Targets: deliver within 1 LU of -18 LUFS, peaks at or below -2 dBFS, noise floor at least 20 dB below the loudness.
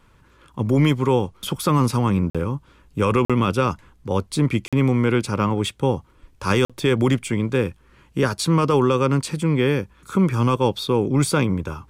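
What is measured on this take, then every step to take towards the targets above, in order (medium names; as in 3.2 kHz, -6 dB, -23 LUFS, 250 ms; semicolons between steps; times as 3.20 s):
dropouts 4; longest dropout 46 ms; loudness -21.0 LUFS; peak level -7.5 dBFS; loudness target -18.0 LUFS
-> interpolate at 2.30/3.25/4.68/6.65 s, 46 ms; trim +3 dB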